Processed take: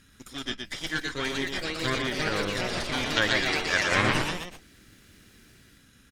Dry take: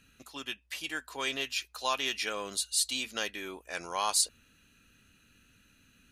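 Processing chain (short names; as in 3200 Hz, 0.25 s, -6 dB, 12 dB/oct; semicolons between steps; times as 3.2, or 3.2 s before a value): minimum comb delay 0.57 ms; treble ducked by the level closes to 2000 Hz, closed at -30.5 dBFS; spectral gain 2.93–4.01, 480–8000 Hz +7 dB; echoes that change speed 0.644 s, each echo +3 st, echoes 3; on a send: echo 0.119 s -5 dB; on the sum: gain +6 dB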